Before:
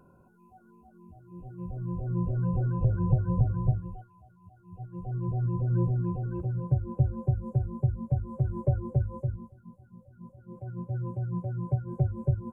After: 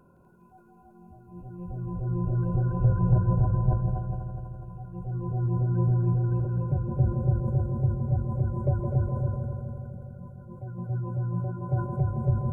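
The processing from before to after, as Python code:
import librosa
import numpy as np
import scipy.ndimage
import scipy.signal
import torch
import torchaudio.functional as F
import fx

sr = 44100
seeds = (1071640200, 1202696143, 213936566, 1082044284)

y = fx.echo_heads(x, sr, ms=83, heads='second and third', feedback_pct=69, wet_db=-7.0)
y = fx.sustainer(y, sr, db_per_s=94.0)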